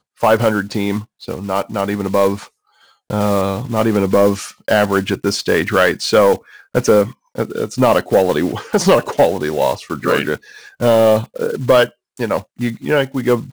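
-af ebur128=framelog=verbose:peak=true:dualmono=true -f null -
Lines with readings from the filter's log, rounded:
Integrated loudness:
  I:         -13.5 LUFS
  Threshold: -23.8 LUFS
Loudness range:
  LRA:         3.6 LU
  Threshold: -33.6 LUFS
  LRA low:   -16.2 LUFS
  LRA high:  -12.5 LUFS
True peak:
  Peak:       -2.8 dBFS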